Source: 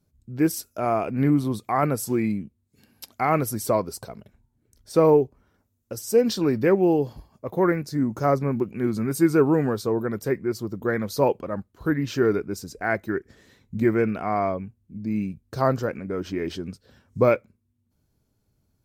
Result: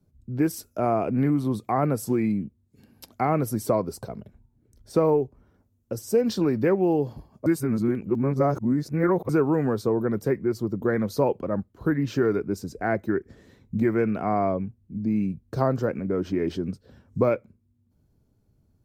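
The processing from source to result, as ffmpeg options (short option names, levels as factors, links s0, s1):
-filter_complex "[0:a]asplit=3[s0][s1][s2];[s0]atrim=end=7.462[s3];[s1]atrim=start=7.458:end=9.292,asetpts=PTS-STARTPTS,areverse[s4];[s2]atrim=start=9.288[s5];[s3][s4]acrossfade=d=0.004:c1=hsin:c2=hsin[s6];[s6][s5]acrossfade=d=0.004:c1=hsin:c2=hsin,tiltshelf=f=970:g=5.5,acrossover=split=100|730[s7][s8][s9];[s7]acompressor=threshold=0.00501:ratio=4[s10];[s8]acompressor=threshold=0.0891:ratio=4[s11];[s9]acompressor=threshold=0.0501:ratio=4[s12];[s10][s11][s12]amix=inputs=3:normalize=0"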